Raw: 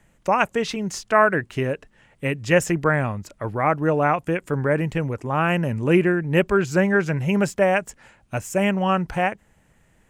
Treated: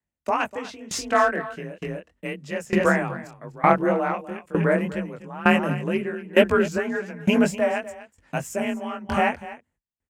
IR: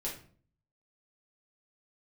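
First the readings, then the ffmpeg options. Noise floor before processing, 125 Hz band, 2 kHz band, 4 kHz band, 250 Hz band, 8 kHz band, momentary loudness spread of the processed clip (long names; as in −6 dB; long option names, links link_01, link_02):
−61 dBFS, −6.5 dB, −2.0 dB, 0.0 dB, −1.5 dB, −2.0 dB, 14 LU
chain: -af "flanger=delay=17.5:depth=7.8:speed=2,agate=range=-32dB:threshold=-50dB:ratio=16:detection=peak,acontrast=42,afreqshift=34,aecho=1:1:247:0.299,aeval=exprs='val(0)*pow(10,-20*if(lt(mod(1.1*n/s,1),2*abs(1.1)/1000),1-mod(1.1*n/s,1)/(2*abs(1.1)/1000),(mod(1.1*n/s,1)-2*abs(1.1)/1000)/(1-2*abs(1.1)/1000))/20)':channel_layout=same,volume=1.5dB"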